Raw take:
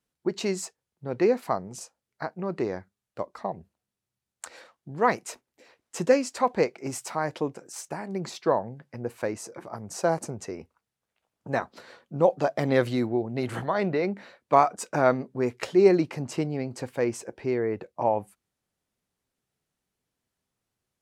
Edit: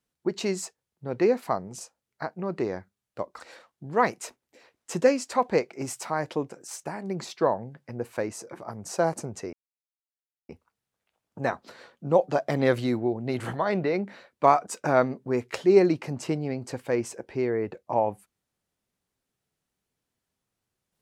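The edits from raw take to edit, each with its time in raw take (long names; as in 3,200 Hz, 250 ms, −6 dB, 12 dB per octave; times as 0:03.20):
0:03.40–0:04.45: remove
0:10.58: splice in silence 0.96 s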